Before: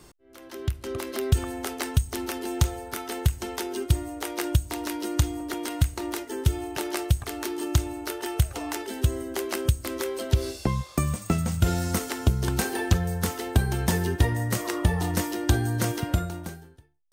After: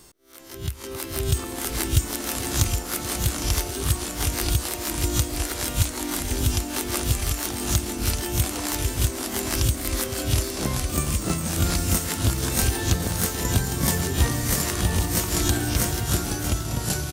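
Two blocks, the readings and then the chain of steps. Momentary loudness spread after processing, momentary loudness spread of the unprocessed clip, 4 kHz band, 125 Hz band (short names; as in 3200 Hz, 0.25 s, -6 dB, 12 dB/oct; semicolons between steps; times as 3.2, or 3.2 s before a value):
4 LU, 8 LU, +7.0 dB, +1.0 dB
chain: spectral swells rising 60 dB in 0.31 s; tapped delay 0.434/0.627 s -13.5/-8 dB; echoes that change speed 0.395 s, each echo -3 st, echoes 2; high shelf 3700 Hz +9.5 dB; gain -3.5 dB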